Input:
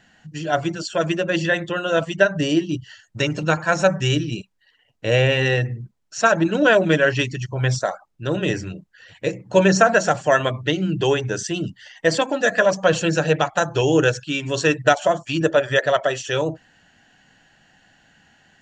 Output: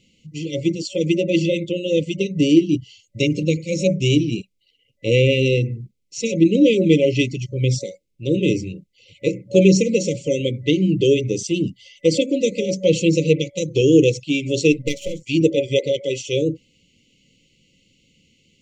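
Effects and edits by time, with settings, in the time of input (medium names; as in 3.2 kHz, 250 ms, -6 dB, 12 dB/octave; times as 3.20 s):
14.72–15.23 s: partial rectifier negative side -7 dB
whole clip: FFT band-reject 570–2000 Hz; dynamic bell 270 Hz, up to +7 dB, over -32 dBFS, Q 1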